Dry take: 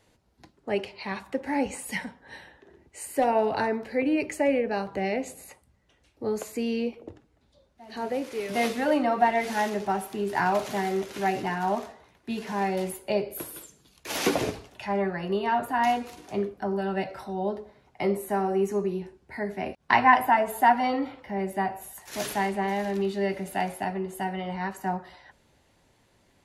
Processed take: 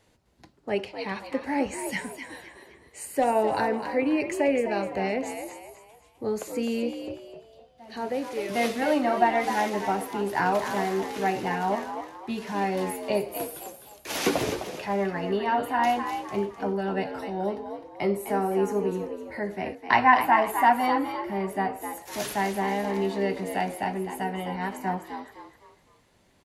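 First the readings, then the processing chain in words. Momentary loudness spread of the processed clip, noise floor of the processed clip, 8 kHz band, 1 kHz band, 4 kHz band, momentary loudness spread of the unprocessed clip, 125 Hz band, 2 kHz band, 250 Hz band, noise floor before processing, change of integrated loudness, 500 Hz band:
13 LU, -60 dBFS, +0.5 dB, +0.5 dB, +1.0 dB, 12 LU, 0.0 dB, +0.5 dB, +0.5 dB, -65 dBFS, +0.5 dB, +0.5 dB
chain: frequency-shifting echo 256 ms, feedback 36%, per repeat +71 Hz, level -8.5 dB

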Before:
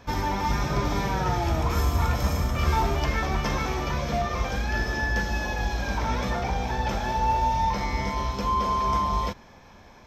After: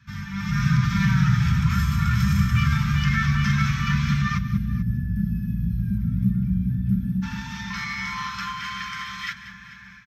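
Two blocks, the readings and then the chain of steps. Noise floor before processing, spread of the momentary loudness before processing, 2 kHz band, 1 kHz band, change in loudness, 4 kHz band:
-50 dBFS, 4 LU, +2.5 dB, -8.0 dB, +2.5 dB, +1.0 dB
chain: peak limiter -18 dBFS, peak gain reduction 6.5 dB; high-pass sweep 110 Hz -> 1.7 kHz, 6.86–8.62 s; flange 1.2 Hz, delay 2.2 ms, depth 4.6 ms, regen -83%; comb 5.1 ms, depth 40%; on a send: feedback echo behind a low-pass 368 ms, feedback 75%, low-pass 920 Hz, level -15 dB; on the sum: time-frequency box 4.38–7.23 s, 710–8700 Hz -29 dB; level rider gain up to 11 dB; elliptic band-stop 190–1400 Hz, stop band 70 dB; treble shelf 3.8 kHz -10.5 dB; multi-tap echo 189/438 ms -14/-19 dB; trim +2 dB

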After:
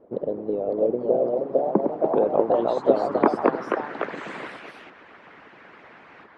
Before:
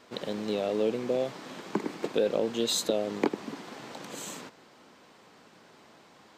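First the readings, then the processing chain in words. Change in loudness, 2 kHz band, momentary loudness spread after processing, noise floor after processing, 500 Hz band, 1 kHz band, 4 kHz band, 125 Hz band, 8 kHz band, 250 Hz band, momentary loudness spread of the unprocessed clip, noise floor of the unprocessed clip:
+7.5 dB, +6.5 dB, 14 LU, -50 dBFS, +8.5 dB, +13.0 dB, under -10 dB, +4.5 dB, under -20 dB, +6.0 dB, 15 LU, -57 dBFS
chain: low-pass sweep 500 Hz -> 1.8 kHz, 1.07–4.14 s; ever faster or slower copies 575 ms, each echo +2 st, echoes 3; harmonic-percussive split harmonic -15 dB; trim +8 dB

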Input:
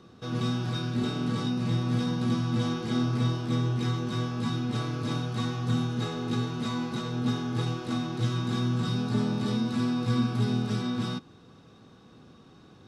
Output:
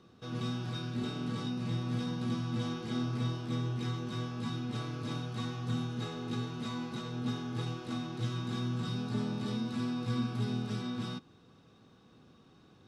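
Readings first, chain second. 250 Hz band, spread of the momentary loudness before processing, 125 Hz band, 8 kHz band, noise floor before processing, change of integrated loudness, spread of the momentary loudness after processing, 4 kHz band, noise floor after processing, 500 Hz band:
-7.0 dB, 4 LU, -7.0 dB, -7.0 dB, -54 dBFS, -7.0 dB, 4 LU, -6.0 dB, -61 dBFS, -7.0 dB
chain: peaking EQ 2.8 kHz +2 dB; trim -7 dB

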